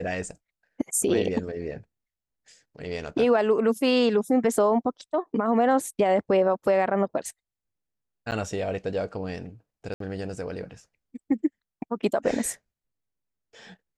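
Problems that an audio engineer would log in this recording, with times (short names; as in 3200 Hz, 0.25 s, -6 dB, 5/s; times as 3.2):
8.31–8.32 gap 9 ms
9.94–10 gap 63 ms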